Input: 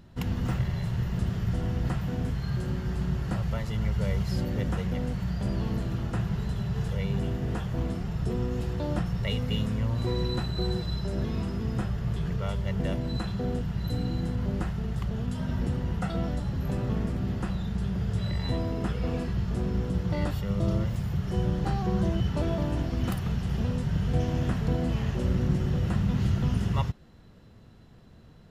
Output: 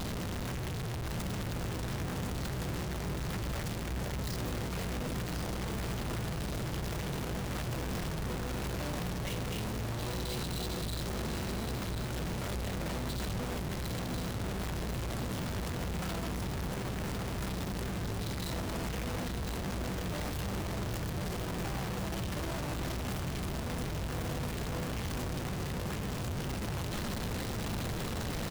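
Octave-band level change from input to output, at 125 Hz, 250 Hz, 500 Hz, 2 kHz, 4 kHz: −8.5, −7.5, −4.0, +1.0, +0.5 decibels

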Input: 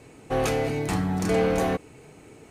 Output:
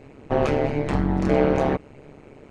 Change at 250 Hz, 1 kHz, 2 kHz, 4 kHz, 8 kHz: +3.5 dB, +2.5 dB, 0.0 dB, −4.0 dB, below −10 dB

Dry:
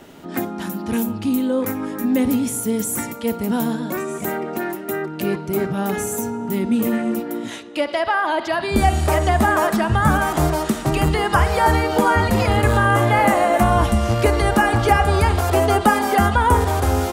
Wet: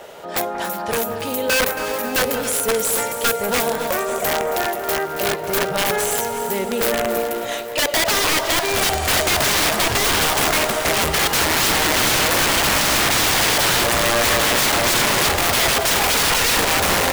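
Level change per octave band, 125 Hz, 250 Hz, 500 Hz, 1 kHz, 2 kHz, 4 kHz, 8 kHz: −10.0, −7.5, −0.5, −2.5, +4.0, +13.0, +11.0 decibels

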